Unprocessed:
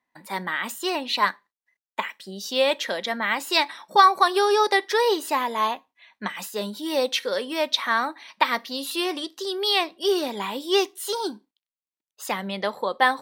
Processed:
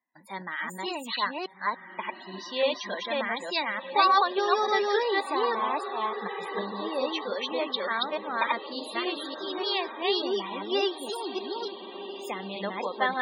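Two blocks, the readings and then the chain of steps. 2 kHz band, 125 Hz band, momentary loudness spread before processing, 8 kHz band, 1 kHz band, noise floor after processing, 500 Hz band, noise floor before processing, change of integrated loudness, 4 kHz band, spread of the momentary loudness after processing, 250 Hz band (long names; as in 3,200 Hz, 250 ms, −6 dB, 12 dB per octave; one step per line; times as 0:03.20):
−5.0 dB, can't be measured, 12 LU, below −10 dB, −4.5 dB, −46 dBFS, −4.0 dB, below −85 dBFS, −5.0 dB, −5.5 dB, 11 LU, −4.0 dB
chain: delay that plays each chunk backwards 292 ms, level 0 dB
feedback delay with all-pass diffusion 1,414 ms, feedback 51%, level −10.5 dB
spectral peaks only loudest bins 64
level −7.5 dB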